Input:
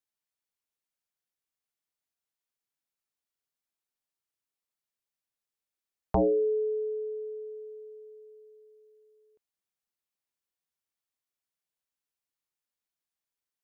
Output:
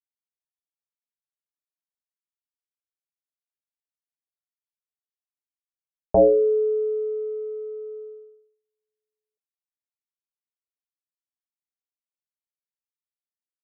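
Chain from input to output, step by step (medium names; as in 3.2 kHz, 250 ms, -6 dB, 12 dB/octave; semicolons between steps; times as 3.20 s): companding laws mixed up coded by mu; gate -44 dBFS, range -42 dB; resonant low-pass 600 Hz, resonance Q 5.8; de-hum 63.34 Hz, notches 2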